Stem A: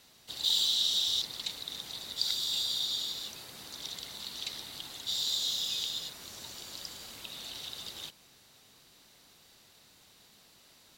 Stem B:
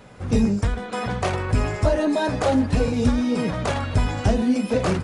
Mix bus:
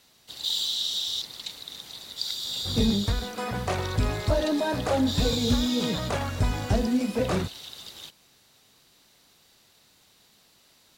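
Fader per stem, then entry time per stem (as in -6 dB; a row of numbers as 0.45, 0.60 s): 0.0, -4.5 dB; 0.00, 2.45 s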